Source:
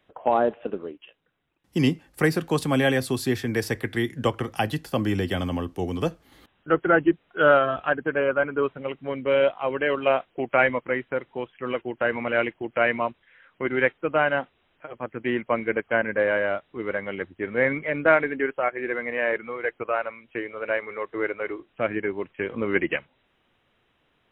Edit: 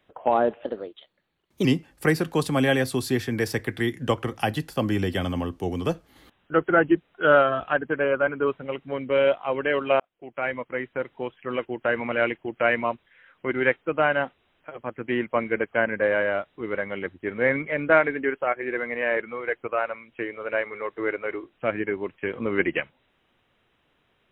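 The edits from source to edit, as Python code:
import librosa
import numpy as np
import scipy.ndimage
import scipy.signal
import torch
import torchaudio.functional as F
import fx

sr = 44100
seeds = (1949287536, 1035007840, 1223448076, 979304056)

y = fx.edit(x, sr, fx.speed_span(start_s=0.64, length_s=1.17, speed=1.16),
    fx.fade_in_span(start_s=10.16, length_s=1.17), tone=tone)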